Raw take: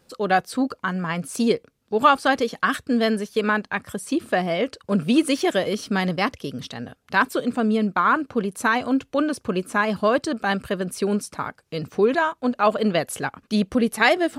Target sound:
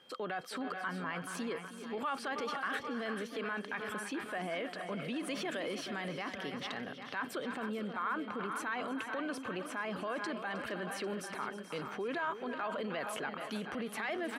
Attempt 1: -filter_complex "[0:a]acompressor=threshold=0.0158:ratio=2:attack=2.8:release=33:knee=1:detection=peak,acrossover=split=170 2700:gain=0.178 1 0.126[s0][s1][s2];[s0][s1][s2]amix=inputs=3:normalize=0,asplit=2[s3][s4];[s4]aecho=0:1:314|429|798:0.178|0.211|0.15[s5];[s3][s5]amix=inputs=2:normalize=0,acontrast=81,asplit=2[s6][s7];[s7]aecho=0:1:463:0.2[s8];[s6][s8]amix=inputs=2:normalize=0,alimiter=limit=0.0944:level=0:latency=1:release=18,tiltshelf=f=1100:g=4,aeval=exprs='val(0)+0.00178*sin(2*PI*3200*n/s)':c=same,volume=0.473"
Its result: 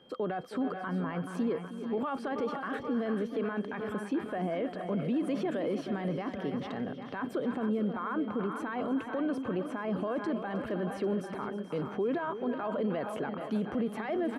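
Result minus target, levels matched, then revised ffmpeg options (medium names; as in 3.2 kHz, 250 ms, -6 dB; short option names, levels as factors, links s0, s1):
1 kHz band -3.5 dB
-filter_complex "[0:a]acompressor=threshold=0.0158:ratio=2:attack=2.8:release=33:knee=1:detection=peak,acrossover=split=170 2700:gain=0.178 1 0.126[s0][s1][s2];[s0][s1][s2]amix=inputs=3:normalize=0,asplit=2[s3][s4];[s4]aecho=0:1:314|429|798:0.178|0.211|0.15[s5];[s3][s5]amix=inputs=2:normalize=0,acontrast=81,asplit=2[s6][s7];[s7]aecho=0:1:463:0.2[s8];[s6][s8]amix=inputs=2:normalize=0,alimiter=limit=0.0944:level=0:latency=1:release=18,tiltshelf=f=1100:g=-6,aeval=exprs='val(0)+0.00178*sin(2*PI*3200*n/s)':c=same,volume=0.473"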